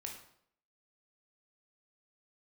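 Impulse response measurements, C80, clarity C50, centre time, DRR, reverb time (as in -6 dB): 9.5 dB, 5.5 dB, 28 ms, 0.5 dB, 0.65 s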